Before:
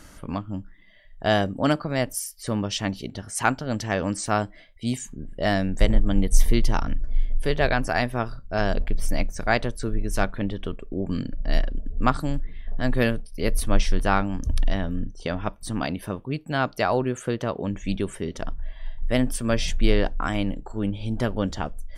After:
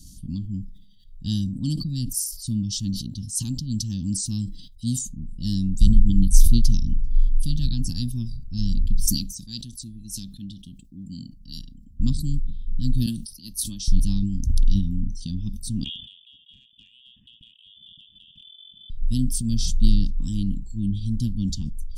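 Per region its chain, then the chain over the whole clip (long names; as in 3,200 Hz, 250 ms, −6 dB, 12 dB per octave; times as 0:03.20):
0:09.06–0:12.00: high-pass filter 440 Hz 6 dB per octave + parametric band 710 Hz −10 dB 2 octaves
0:13.06–0:13.88: high-pass filter 920 Hz 6 dB per octave + multiband upward and downward expander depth 70%
0:15.84–0:18.90: voice inversion scrambler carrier 3,300 Hz + downward compressor 8 to 1, threshold −36 dBFS + ring modulation 190 Hz
whole clip: inverse Chebyshev band-stop filter 410–2,300 Hz, stop band 40 dB; level that may fall only so fast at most 70 dB per second; level +3 dB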